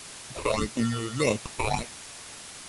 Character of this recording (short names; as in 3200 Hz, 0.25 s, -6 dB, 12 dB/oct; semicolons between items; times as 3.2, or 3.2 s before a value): aliases and images of a low sample rate 1600 Hz, jitter 0%; phasing stages 8, 1.7 Hz, lowest notch 200–1500 Hz; a quantiser's noise floor 8-bit, dither triangular; MP3